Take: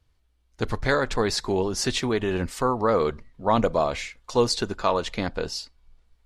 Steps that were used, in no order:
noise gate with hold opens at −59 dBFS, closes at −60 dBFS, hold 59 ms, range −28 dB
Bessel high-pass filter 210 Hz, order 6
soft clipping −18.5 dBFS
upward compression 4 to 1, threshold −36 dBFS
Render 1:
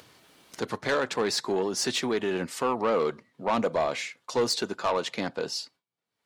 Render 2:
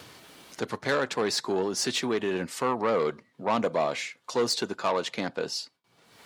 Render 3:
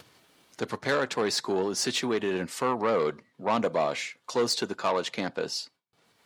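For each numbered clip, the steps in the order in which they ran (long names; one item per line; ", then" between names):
Bessel high-pass filter, then noise gate with hold, then upward compression, then soft clipping
soft clipping, then Bessel high-pass filter, then upward compression, then noise gate with hold
upward compression, then soft clipping, then Bessel high-pass filter, then noise gate with hold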